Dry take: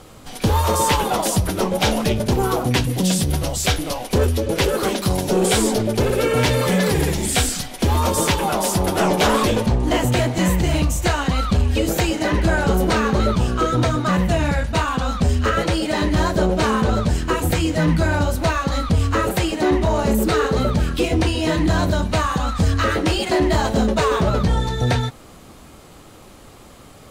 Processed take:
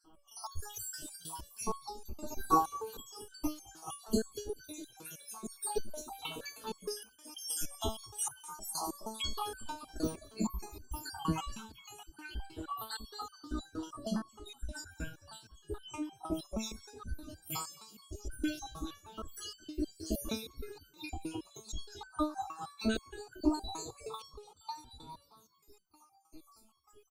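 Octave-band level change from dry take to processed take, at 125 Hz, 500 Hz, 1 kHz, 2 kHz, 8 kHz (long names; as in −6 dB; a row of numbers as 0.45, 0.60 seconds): −28.5, −23.5, −18.0, −25.5, −16.0 decibels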